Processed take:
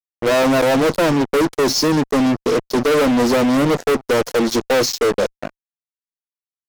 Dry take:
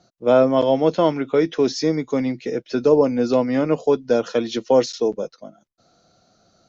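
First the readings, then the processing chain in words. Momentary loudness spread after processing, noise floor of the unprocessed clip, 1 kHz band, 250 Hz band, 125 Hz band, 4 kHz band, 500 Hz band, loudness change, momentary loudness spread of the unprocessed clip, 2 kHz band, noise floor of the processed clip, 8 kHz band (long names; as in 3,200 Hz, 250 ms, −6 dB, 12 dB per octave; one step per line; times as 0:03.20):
4 LU, −63 dBFS, +5.0 dB, +4.0 dB, +4.5 dB, +9.0 dB, +1.0 dB, +2.5 dB, 7 LU, +11.5 dB, below −85 dBFS, can't be measured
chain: flat-topped bell 2,100 Hz −13 dB
fuzz pedal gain 31 dB, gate −35 dBFS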